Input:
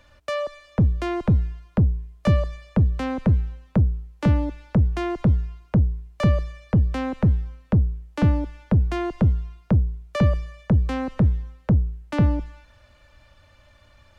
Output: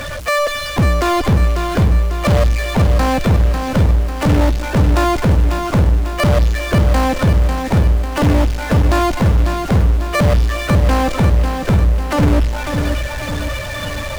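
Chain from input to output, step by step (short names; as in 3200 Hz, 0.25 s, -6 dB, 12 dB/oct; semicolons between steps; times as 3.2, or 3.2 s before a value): bin magnitudes rounded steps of 30 dB; power-law curve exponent 0.35; lo-fi delay 0.546 s, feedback 55%, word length 7-bit, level -6 dB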